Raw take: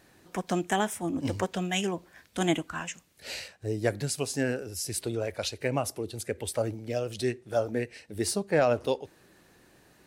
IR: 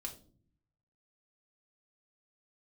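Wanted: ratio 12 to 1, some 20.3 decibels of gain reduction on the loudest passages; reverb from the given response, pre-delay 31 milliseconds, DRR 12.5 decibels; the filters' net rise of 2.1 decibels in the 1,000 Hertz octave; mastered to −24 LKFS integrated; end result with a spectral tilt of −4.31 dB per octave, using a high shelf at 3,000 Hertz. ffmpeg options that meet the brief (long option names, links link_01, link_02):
-filter_complex "[0:a]equalizer=frequency=1000:width_type=o:gain=3.5,highshelf=frequency=3000:gain=-4,acompressor=threshold=-40dB:ratio=12,asplit=2[link_01][link_02];[1:a]atrim=start_sample=2205,adelay=31[link_03];[link_02][link_03]afir=irnorm=-1:irlink=0,volume=-10dB[link_04];[link_01][link_04]amix=inputs=2:normalize=0,volume=21dB"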